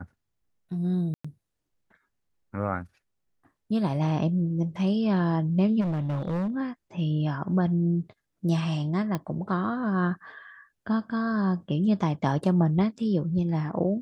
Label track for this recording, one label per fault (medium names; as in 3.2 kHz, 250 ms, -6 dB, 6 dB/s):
1.140000	1.250000	dropout 105 ms
5.800000	6.500000	clipped -25 dBFS
9.150000	9.150000	pop -16 dBFS